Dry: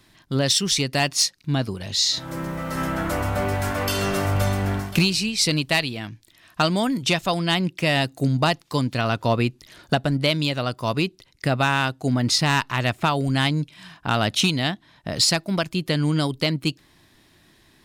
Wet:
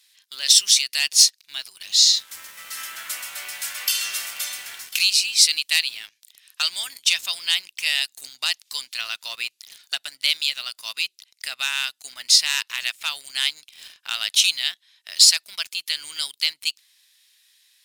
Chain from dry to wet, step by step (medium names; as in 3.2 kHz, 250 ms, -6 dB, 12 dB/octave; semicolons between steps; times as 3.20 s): Chebyshev high-pass 2.6 kHz, order 2; peaking EQ 13 kHz +11 dB 2.7 oct; in parallel at -4.5 dB: word length cut 6-bit, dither none; on the sum: trim -5.5 dB